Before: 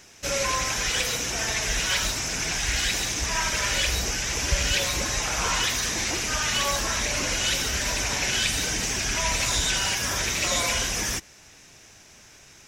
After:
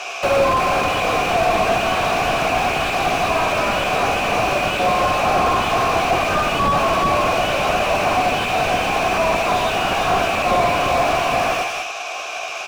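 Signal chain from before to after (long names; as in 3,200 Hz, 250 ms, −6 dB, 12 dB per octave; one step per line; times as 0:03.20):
high-pass filter 330 Hz 24 dB per octave
tilt shelving filter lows −4.5 dB, about 640 Hz
multi-tap delay 51/118/356/442/636 ms −8.5/−19/−8/−10.5/−18.5 dB
downward compressor, threshold −26 dBFS, peak gain reduction 10.5 dB
formant filter a
double-tracking delay 15 ms −7 dB
boost into a limiter +34.5 dB
slew-rate limiting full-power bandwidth 180 Hz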